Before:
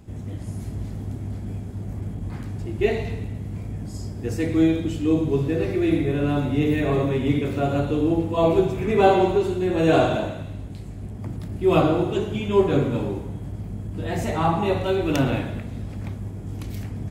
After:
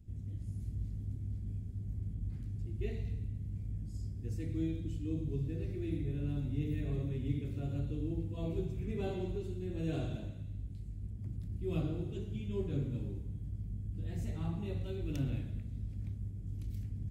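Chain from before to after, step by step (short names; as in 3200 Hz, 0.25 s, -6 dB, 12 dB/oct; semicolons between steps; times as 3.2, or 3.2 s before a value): passive tone stack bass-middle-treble 10-0-1; gain +2 dB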